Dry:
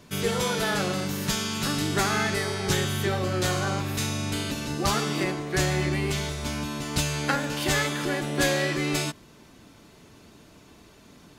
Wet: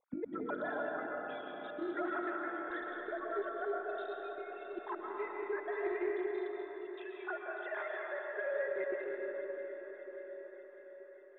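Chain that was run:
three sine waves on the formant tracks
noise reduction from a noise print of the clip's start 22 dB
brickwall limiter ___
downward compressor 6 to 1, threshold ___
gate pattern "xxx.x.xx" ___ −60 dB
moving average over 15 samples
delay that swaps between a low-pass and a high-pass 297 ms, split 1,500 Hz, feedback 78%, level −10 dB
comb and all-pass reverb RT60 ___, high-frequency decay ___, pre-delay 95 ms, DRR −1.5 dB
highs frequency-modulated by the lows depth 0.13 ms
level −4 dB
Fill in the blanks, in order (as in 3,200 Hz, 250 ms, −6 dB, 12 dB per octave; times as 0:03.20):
−17.5 dBFS, −31 dBFS, 185 BPM, 4.9 s, 0.25×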